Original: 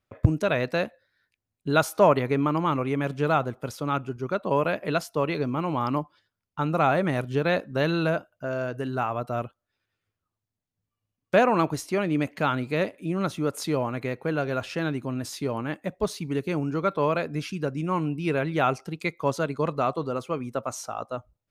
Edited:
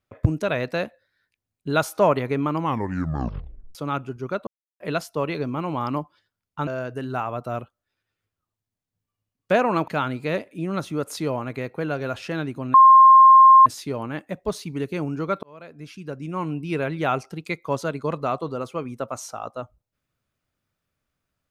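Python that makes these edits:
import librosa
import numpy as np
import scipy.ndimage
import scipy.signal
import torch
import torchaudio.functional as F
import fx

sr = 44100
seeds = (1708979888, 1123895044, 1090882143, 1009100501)

y = fx.edit(x, sr, fx.tape_stop(start_s=2.58, length_s=1.17),
    fx.silence(start_s=4.47, length_s=0.33),
    fx.cut(start_s=6.67, length_s=1.83),
    fx.cut(start_s=11.71, length_s=0.64),
    fx.insert_tone(at_s=15.21, length_s=0.92, hz=1060.0, db=-7.0),
    fx.fade_in_span(start_s=16.98, length_s=1.18), tone=tone)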